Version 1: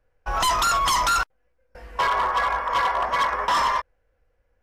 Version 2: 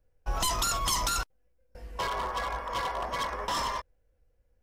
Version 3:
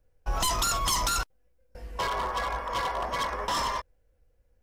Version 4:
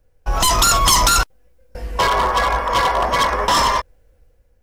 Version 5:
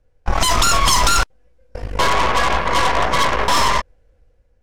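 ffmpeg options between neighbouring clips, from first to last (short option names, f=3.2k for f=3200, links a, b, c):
-af "equalizer=f=1.4k:t=o:w=2.6:g=-12"
-af "asoftclip=type=tanh:threshold=-19dB,volume=2.5dB"
-af "dynaudnorm=f=100:g=9:m=5dB,volume=8dB"
-af "aeval=exprs='0.562*(cos(1*acos(clip(val(0)/0.562,-1,1)))-cos(1*PI/2))+0.112*(cos(8*acos(clip(val(0)/0.562,-1,1)))-cos(8*PI/2))':c=same,adynamicsmooth=sensitivity=1:basefreq=7.9k,volume=-1dB"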